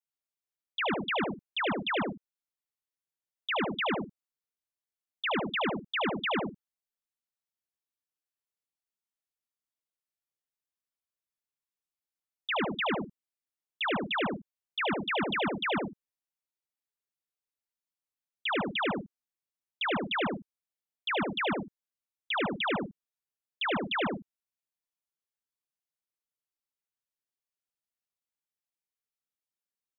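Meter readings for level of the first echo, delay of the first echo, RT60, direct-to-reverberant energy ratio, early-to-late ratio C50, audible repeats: −5.0 dB, 74 ms, no reverb audible, no reverb audible, no reverb audible, 2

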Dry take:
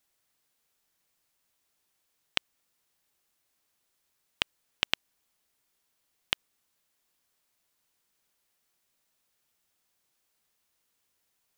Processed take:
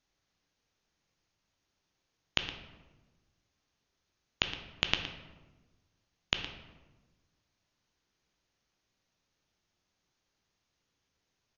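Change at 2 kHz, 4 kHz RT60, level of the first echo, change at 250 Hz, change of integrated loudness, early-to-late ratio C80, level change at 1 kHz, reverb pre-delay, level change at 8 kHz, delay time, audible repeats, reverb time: −1.0 dB, 0.70 s, −14.0 dB, +5.0 dB, −1.5 dB, 9.0 dB, 0.0 dB, 12 ms, −3.5 dB, 116 ms, 1, 1.2 s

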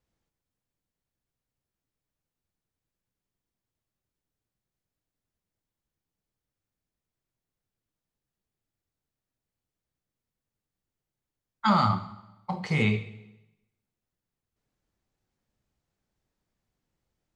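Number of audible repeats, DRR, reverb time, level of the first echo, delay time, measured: no echo audible, 10.5 dB, 1.0 s, no echo audible, no echo audible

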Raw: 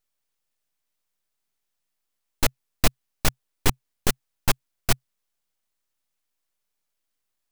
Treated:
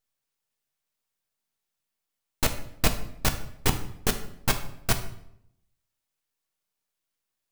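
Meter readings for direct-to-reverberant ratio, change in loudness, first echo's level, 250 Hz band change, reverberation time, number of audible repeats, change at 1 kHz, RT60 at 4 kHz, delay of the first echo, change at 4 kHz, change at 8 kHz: 5.5 dB, −1.5 dB, no echo audible, −1.0 dB, 0.75 s, no echo audible, −1.0 dB, 0.55 s, no echo audible, −1.5 dB, −1.5 dB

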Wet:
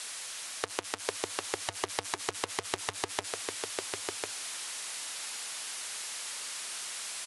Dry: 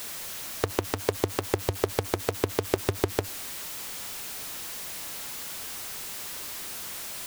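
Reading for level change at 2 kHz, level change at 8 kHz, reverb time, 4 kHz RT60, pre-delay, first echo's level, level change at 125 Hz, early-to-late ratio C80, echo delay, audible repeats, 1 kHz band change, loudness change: −0.5 dB, +1.0 dB, no reverb audible, no reverb audible, no reverb audible, −3.5 dB, −19.0 dB, no reverb audible, 1,049 ms, 1, −2.5 dB, −4.0 dB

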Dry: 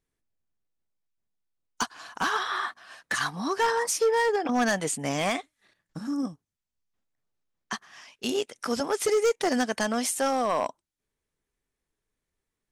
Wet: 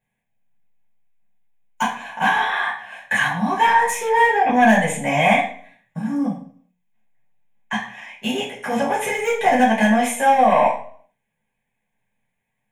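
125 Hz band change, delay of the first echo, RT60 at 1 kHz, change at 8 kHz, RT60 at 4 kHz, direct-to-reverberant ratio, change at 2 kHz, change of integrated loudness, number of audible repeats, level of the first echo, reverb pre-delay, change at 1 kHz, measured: +11.0 dB, no echo audible, 0.50 s, 0.0 dB, 0.45 s, −7.5 dB, +11.0 dB, +9.0 dB, no echo audible, no echo audible, 3 ms, +12.5 dB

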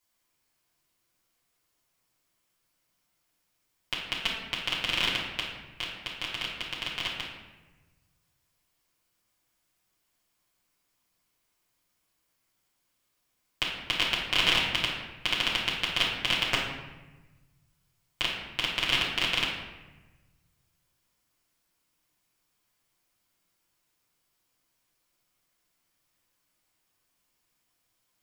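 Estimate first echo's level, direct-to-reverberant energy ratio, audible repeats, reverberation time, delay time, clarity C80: no echo audible, −6.5 dB, no echo audible, 1.2 s, no echo audible, 5.0 dB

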